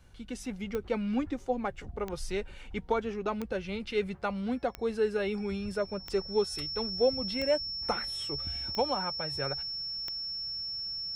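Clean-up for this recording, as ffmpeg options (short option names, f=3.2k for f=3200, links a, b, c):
-af "adeclick=t=4,bandreject=f=5.4k:w=30"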